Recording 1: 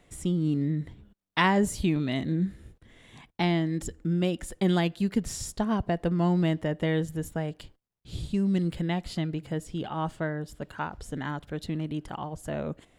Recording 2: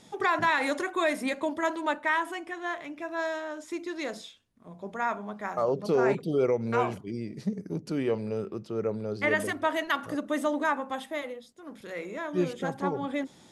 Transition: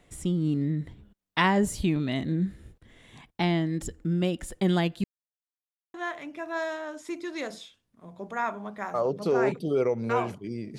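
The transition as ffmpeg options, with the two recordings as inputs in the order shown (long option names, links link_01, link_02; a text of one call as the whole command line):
ffmpeg -i cue0.wav -i cue1.wav -filter_complex "[0:a]apad=whole_dur=10.78,atrim=end=10.78,asplit=2[link_01][link_02];[link_01]atrim=end=5.04,asetpts=PTS-STARTPTS,afade=type=out:start_time=5.036:duration=0.004:curve=hsin[link_03];[link_02]atrim=start=5.04:end=5.94,asetpts=PTS-STARTPTS,volume=0[link_04];[1:a]atrim=start=2.57:end=7.41,asetpts=PTS-STARTPTS,afade=type=in:duration=0.004:curve=hsin[link_05];[link_03][link_04][link_05]concat=n=3:v=0:a=1" out.wav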